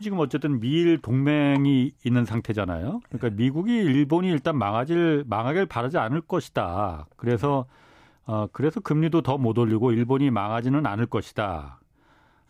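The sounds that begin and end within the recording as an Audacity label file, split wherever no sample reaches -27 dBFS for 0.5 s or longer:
8.290000	11.610000	sound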